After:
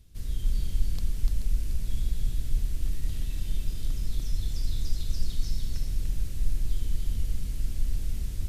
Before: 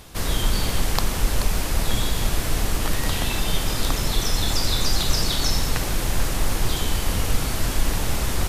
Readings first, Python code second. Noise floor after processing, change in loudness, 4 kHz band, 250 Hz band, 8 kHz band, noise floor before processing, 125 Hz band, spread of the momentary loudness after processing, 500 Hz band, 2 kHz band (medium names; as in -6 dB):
-34 dBFS, -9.5 dB, -20.5 dB, -15.0 dB, -19.0 dB, -26 dBFS, -7.0 dB, 3 LU, -23.5 dB, -24.5 dB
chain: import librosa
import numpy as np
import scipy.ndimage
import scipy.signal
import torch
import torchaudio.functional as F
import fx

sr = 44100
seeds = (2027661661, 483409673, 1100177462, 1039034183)

p1 = fx.tone_stack(x, sr, knobs='10-0-1')
y = p1 + fx.echo_single(p1, sr, ms=294, db=-3.5, dry=0)